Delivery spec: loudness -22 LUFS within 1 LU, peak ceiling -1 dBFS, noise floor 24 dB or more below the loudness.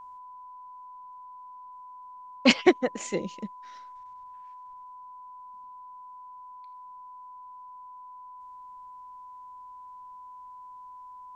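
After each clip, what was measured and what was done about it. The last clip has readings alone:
steady tone 1000 Hz; tone level -43 dBFS; loudness -25.5 LUFS; peak -4.0 dBFS; loudness target -22.0 LUFS
-> notch 1000 Hz, Q 30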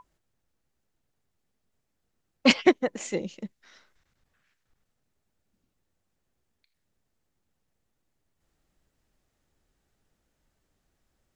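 steady tone none; loudness -24.5 LUFS; peak -4.0 dBFS; loudness target -22.0 LUFS
-> gain +2.5 dB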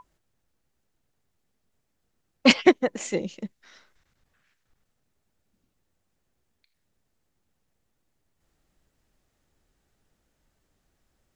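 loudness -22.0 LUFS; peak -1.5 dBFS; noise floor -76 dBFS

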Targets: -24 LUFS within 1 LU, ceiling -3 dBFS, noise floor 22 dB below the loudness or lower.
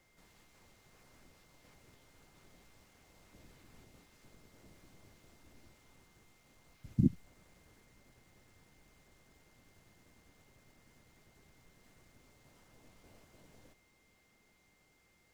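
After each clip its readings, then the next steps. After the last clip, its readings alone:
steady tone 2100 Hz; tone level -73 dBFS; loudness -34.0 LUFS; peak -14.0 dBFS; loudness target -24.0 LUFS
-> notch 2100 Hz, Q 30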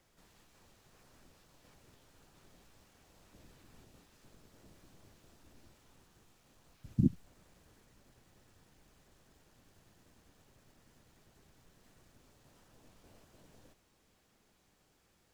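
steady tone none; loudness -33.5 LUFS; peak -14.0 dBFS; loudness target -24.0 LUFS
-> gain +9.5 dB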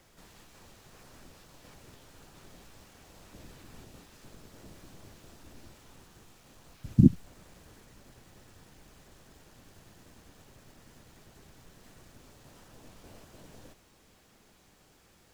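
loudness -24.5 LUFS; peak -4.5 dBFS; noise floor -62 dBFS

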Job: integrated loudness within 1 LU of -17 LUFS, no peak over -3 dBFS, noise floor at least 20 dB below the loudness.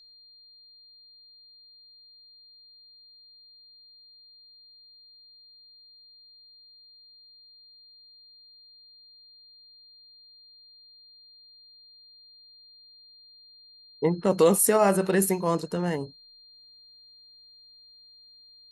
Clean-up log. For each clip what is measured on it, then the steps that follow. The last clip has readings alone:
steady tone 4200 Hz; tone level -51 dBFS; loudness -24.0 LUFS; peak -8.0 dBFS; loudness target -17.0 LUFS
-> notch 4200 Hz, Q 30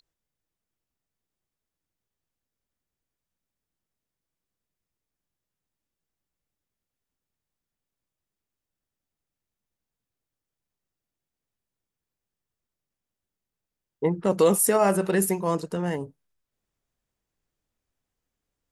steady tone none; loudness -23.5 LUFS; peak -8.5 dBFS; loudness target -17.0 LUFS
-> gain +6.5 dB; limiter -3 dBFS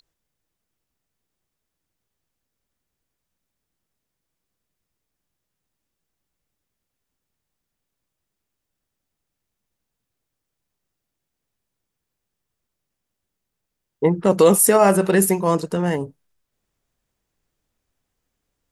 loudness -17.0 LUFS; peak -3.0 dBFS; noise floor -82 dBFS

